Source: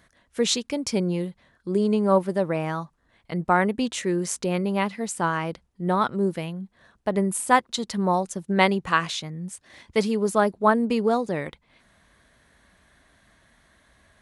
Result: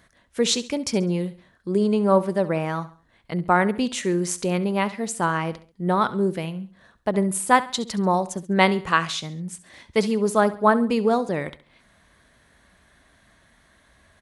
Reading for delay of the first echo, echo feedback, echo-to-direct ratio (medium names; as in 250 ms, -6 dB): 68 ms, 39%, -16.0 dB